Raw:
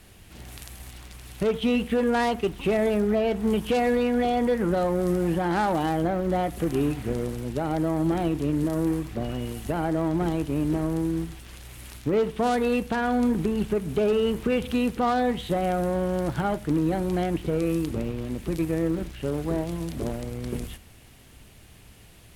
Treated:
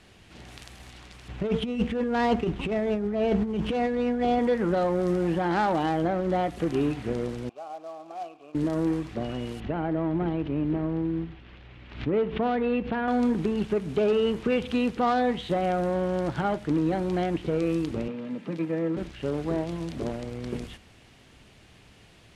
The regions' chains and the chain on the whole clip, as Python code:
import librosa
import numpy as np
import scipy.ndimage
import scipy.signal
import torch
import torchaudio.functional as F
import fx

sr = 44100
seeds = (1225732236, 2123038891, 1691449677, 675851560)

y = fx.chain(x, sr, fx.median_filter(points=9),
    fx.low_shelf(hz=260.0, db=7.5),
    fx.over_compress(threshold_db=-23.0, ratio=-0.5), at=(1.28, 4.39))
y = fx.chain(y, sr, fx.vowel_filter(vowel='a'),
    fx.low_shelf(hz=360.0, db=-7.5),
    fx.quant_float(bits=2), at=(7.49, 8.55))
y = fx.chain(y, sr, fx.ladder_lowpass(hz=3900.0, resonance_pct=20),
    fx.low_shelf(hz=490.0, db=6.0),
    fx.pre_swell(db_per_s=100.0), at=(9.6, 13.08))
y = fx.chain(y, sr, fx.highpass(hz=170.0, slope=24),
    fx.bass_treble(bass_db=2, treble_db=-10),
    fx.notch_comb(f0_hz=370.0), at=(18.08, 18.97))
y = scipy.signal.sosfilt(scipy.signal.butter(2, 5700.0, 'lowpass', fs=sr, output='sos'), y)
y = fx.low_shelf(y, sr, hz=87.0, db=-10.0)